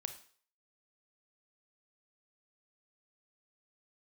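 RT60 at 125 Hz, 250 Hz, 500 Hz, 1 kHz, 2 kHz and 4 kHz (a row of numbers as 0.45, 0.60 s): 0.35, 0.40, 0.50, 0.50, 0.45, 0.50 s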